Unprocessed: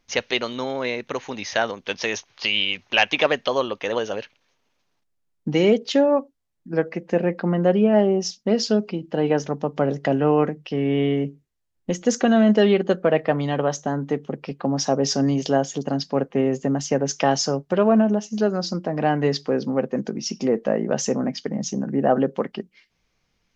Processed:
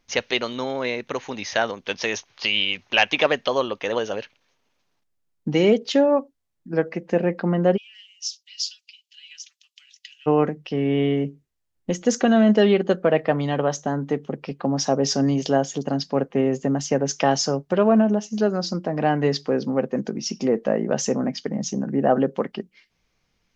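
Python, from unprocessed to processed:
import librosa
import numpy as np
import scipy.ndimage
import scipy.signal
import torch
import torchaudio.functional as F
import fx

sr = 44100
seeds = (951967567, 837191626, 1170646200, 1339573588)

y = fx.steep_highpass(x, sr, hz=2700.0, slope=36, at=(7.76, 10.26), fade=0.02)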